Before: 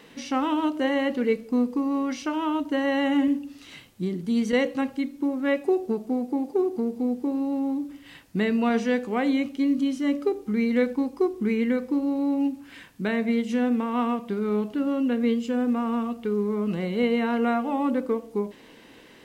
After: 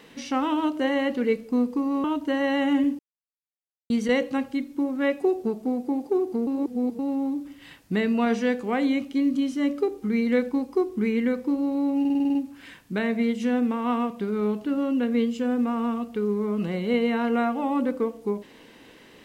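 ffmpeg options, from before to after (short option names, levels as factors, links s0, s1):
-filter_complex "[0:a]asplit=13[s0][s1][s2][s3][s4][s5][s6][s7][s8][s9][s10][s11][s12];[s0]atrim=end=2.042[s13];[s1]atrim=start=2.478:end=3.43,asetpts=PTS-STARTPTS,afade=t=out:st=0.948:d=0.004:c=hsin[s14];[s2]atrim=start=3.43:end=4.34,asetpts=PTS-STARTPTS,volume=0[s15];[s3]atrim=start=4.34:end=6.912,asetpts=PTS-STARTPTS,afade=t=in:d=0.004:c=hsin[s16];[s4]atrim=start=6.908:end=7.432,asetpts=PTS-STARTPTS,areverse[s17];[s5]atrim=start=7.428:end=12.492[s18];[s6]atrim=start=12.438:end=12.492[s19];[s7]atrim=start=12.438:end=12.492[s20];[s8]atrim=start=12.438:end=12.492[s21];[s9]atrim=start=12.438:end=12.492[s22];[s10]atrim=start=12.438:end=12.492[s23];[s11]atrim=start=12.438:end=12.492[s24];[s12]atrim=start=12.438[s25];[s14][s15][s16]concat=n=3:v=0:a=1[s26];[s13][s26]acrossfade=d=0.004:c1=hsin:c2=hsin[s27];[s27][s17]acrossfade=d=0.004:c1=hsin:c2=hsin[s28];[s28][s18]acrossfade=d=0.004:c1=hsin:c2=hsin[s29];[s29][s19]acrossfade=d=0.004:c1=hsin:c2=hsin[s30];[s30][s20]acrossfade=d=0.004:c1=hsin:c2=hsin[s31];[s31][s21]acrossfade=d=0.004:c1=hsin:c2=hsin[s32];[s32][s22]acrossfade=d=0.004:c1=hsin:c2=hsin[s33];[s33][s23]acrossfade=d=0.004:c1=hsin:c2=hsin[s34];[s34][s24]acrossfade=d=0.004:c1=hsin:c2=hsin[s35];[s35][s25]acrossfade=d=0.004:c1=hsin:c2=hsin"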